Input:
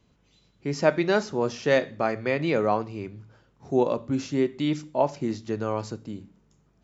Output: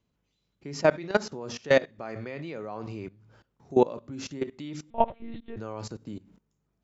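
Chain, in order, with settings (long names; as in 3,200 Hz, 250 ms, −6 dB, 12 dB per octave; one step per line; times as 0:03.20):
output level in coarse steps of 20 dB
0:04.90–0:05.57: one-pitch LPC vocoder at 8 kHz 230 Hz
level +3 dB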